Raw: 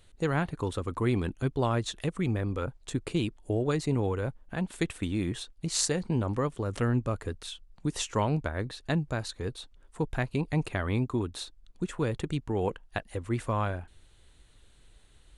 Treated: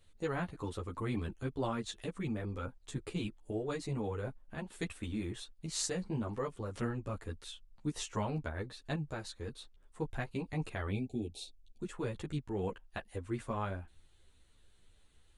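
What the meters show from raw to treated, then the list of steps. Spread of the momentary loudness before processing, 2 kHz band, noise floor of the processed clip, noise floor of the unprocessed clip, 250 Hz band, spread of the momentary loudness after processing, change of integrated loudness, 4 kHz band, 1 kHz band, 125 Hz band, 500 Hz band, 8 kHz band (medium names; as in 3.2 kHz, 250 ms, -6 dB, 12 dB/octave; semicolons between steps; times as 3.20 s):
8 LU, -7.5 dB, -64 dBFS, -58 dBFS, -8.0 dB, 9 LU, -8.0 dB, -7.5 dB, -7.5 dB, -9.0 dB, -8.0 dB, -7.5 dB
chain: spectral selection erased 10.91–11.80 s, 820–2200 Hz; three-phase chorus; trim -4.5 dB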